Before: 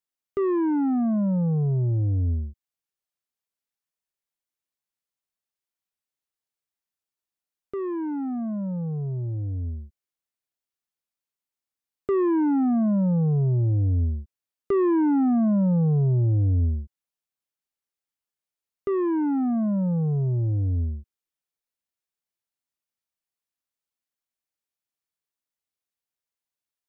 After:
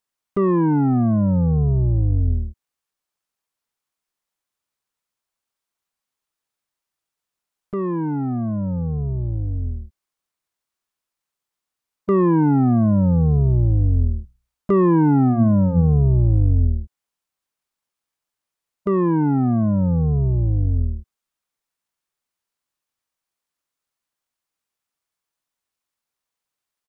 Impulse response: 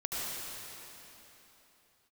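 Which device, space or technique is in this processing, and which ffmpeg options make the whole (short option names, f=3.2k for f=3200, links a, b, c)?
octave pedal: -filter_complex "[0:a]asettb=1/sr,asplit=3[a][b][c];[a]atrim=end=14.204[d];[b]atrim=start=14.2:end=15.9,asetpts=PTS-STARTPTS,afade=t=in:d=0.004:c=qsin,afade=t=out:st=1.696:d=0.004:c=qsin,bandreject=f=60:t=h:w=6,bandreject=f=120:t=h:w=6,bandreject=f=180:t=h:w=6,bandreject=f=240:t=h:w=6[e];[c]atrim=start=15.896[f];[d][e]acrossfade=d=0.004:c1=hsin:c2=qsin[g];[g][f]acrossfade=d=0.004:c1=qsin:c2=hsin,asplit=2[h][i];[i]asetrate=22050,aresample=44100,atempo=2,volume=-3dB[j];[h][j]amix=inputs=2:normalize=0,equalizer=f=1.1k:w=1.4:g=4.5,volume=3.5dB"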